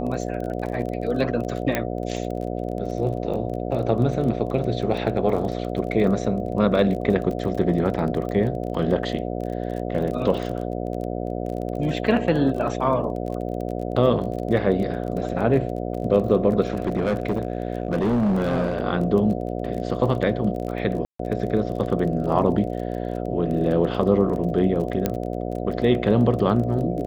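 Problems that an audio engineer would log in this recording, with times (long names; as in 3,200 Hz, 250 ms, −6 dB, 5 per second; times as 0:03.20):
mains buzz 60 Hz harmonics 12 −28 dBFS
surface crackle 25 per second −30 dBFS
0:01.75: click −8 dBFS
0:16.67–0:18.80: clipping −17.5 dBFS
0:21.05–0:21.19: drop-out 144 ms
0:25.06: click −8 dBFS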